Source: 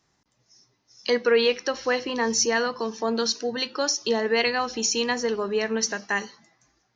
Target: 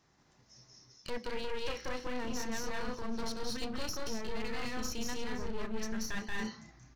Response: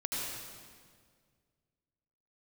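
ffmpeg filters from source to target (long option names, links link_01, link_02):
-filter_complex "[0:a]highshelf=frequency=3900:gain=-6,asplit=2[link_01][link_02];[link_02]aecho=0:1:180.8|212.8|244.9:0.794|0.708|0.355[link_03];[link_01][link_03]amix=inputs=2:normalize=0,alimiter=limit=-16.5dB:level=0:latency=1:release=237,aeval=exprs='clip(val(0),-1,0.015)':channel_layout=same,asubboost=boost=4:cutoff=220,areverse,acompressor=threshold=-34dB:ratio=4,areverse,volume=1dB"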